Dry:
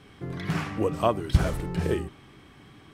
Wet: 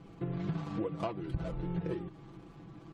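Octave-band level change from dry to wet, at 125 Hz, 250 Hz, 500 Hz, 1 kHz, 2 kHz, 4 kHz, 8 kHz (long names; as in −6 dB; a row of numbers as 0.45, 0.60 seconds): −9.0 dB, −6.0 dB, −11.0 dB, −12.5 dB, −15.0 dB, −15.0 dB, below −20 dB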